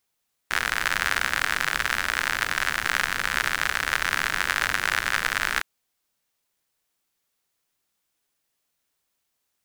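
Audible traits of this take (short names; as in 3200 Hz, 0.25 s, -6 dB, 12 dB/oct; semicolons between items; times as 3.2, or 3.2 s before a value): noise floor -77 dBFS; spectral tilt -2.0 dB/oct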